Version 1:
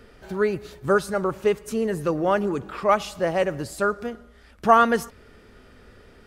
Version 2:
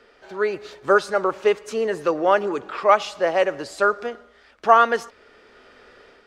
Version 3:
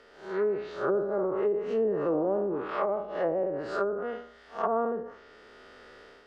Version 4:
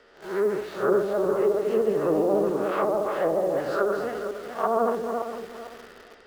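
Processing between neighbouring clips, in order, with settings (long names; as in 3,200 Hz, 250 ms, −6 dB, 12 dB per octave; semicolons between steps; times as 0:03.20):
three-way crossover with the lows and the highs turned down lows −19 dB, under 340 Hz, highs −19 dB, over 7,000 Hz; automatic gain control gain up to 5.5 dB
spectrum smeared in time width 164 ms; notch filter 2,400 Hz, Q 13; treble cut that deepens with the level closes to 450 Hz, closed at −21 dBFS
feedback delay that plays each chunk backwards 227 ms, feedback 50%, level −5 dB; in parallel at −6.5 dB: bit reduction 7 bits; on the sum: pitch vibrato 14 Hz 65 cents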